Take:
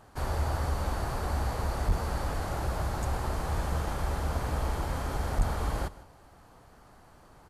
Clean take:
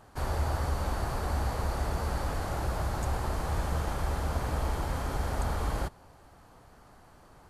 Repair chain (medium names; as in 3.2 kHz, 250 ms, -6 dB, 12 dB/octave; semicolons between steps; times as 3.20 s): clip repair -18.5 dBFS; 1.87–1.99 s: high-pass 140 Hz 24 dB/octave; 5.37–5.49 s: high-pass 140 Hz 24 dB/octave; inverse comb 155 ms -19 dB